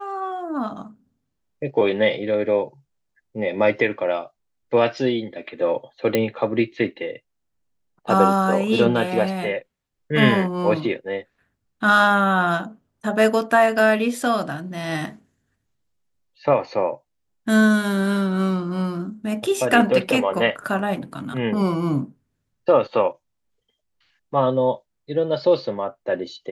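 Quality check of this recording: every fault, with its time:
6.15 s: pop -6 dBFS

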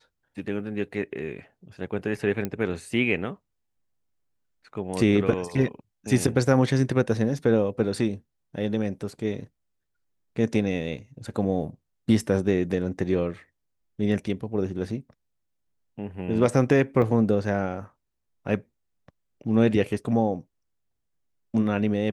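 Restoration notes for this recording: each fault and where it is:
2.45 s: pop -15 dBFS
17.02 s: dropout 2.4 ms

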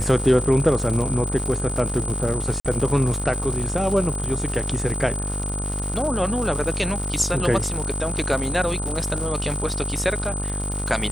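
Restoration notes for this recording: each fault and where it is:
buzz 50 Hz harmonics 30 -28 dBFS
crackle 180 per s -27 dBFS
whine 8.1 kHz -29 dBFS
2.60–2.65 s: dropout 47 ms

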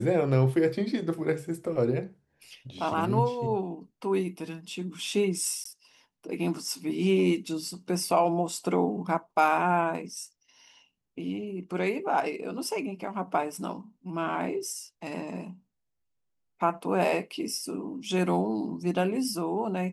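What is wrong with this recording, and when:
5.64–5.65 s: dropout 14 ms

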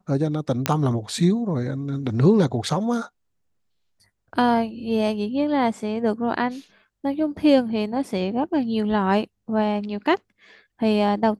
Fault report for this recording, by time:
0.66 s: pop -3 dBFS

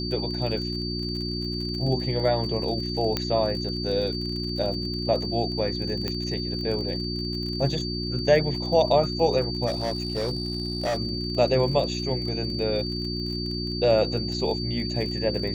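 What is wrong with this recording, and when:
crackle 37 per s -33 dBFS
hum 60 Hz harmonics 6 -31 dBFS
whine 4.6 kHz -32 dBFS
3.17 s: pop -10 dBFS
6.08 s: pop -14 dBFS
9.66–10.98 s: clipped -22.5 dBFS

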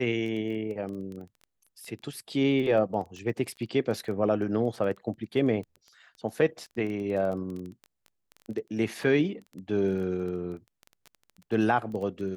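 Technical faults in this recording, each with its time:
crackle 14 per s -35 dBFS

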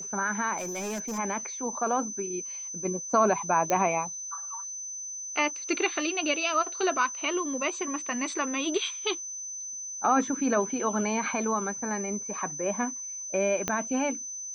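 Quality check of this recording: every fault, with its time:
whine 6.1 kHz -35 dBFS
0.58–1.19 s: clipped -30 dBFS
3.70 s: pop -12 dBFS
13.68 s: pop -12 dBFS

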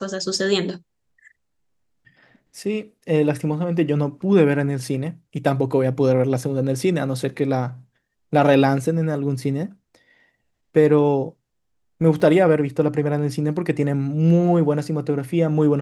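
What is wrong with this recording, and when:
12.20 s: dropout 4.3 ms

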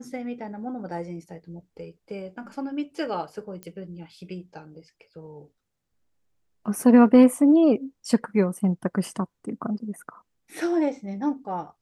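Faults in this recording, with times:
3.63 s: pop -22 dBFS

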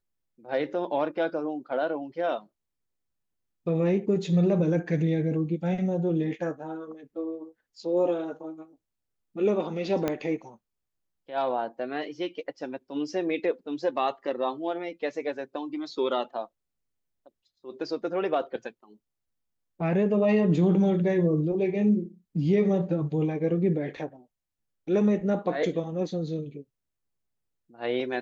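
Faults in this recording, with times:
10.08 s: pop -13 dBFS

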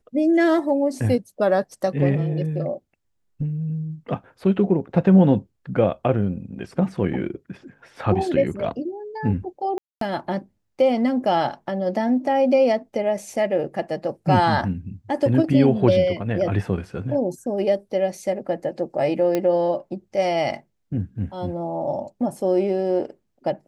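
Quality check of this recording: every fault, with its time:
9.78–10.01 s: dropout 233 ms
19.35 s: pop -10 dBFS

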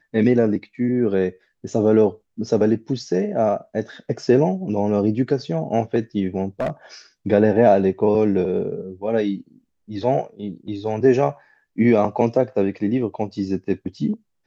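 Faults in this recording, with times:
6.60–6.70 s: clipped -18.5 dBFS

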